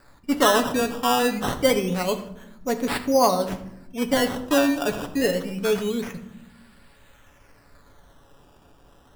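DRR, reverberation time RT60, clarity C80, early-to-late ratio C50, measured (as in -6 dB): 5.5 dB, not exponential, 13.5 dB, 11.5 dB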